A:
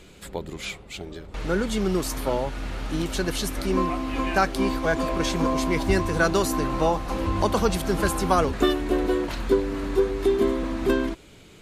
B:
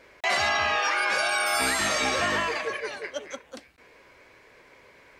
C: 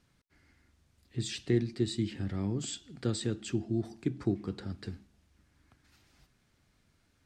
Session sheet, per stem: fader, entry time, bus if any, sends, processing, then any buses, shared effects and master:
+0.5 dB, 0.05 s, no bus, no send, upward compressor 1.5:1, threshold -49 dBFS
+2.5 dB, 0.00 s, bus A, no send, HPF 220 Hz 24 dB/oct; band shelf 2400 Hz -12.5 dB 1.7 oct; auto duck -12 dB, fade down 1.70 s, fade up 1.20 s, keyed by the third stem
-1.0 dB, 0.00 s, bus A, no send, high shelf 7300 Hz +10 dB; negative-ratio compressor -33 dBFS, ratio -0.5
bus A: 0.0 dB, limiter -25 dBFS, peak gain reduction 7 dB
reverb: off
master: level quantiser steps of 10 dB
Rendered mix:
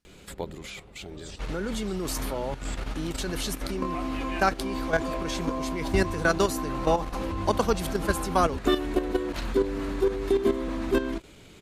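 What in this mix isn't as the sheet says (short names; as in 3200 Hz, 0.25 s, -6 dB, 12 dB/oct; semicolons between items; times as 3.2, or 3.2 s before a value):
stem B: muted; stem C -1.0 dB -> -10.5 dB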